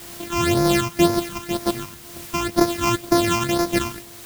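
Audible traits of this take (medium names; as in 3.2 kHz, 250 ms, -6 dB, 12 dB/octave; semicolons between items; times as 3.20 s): a buzz of ramps at a fixed pitch in blocks of 128 samples; phasing stages 8, 2 Hz, lowest notch 510–2900 Hz; a quantiser's noise floor 8-bit, dither triangular; tremolo triangle 1.9 Hz, depth 50%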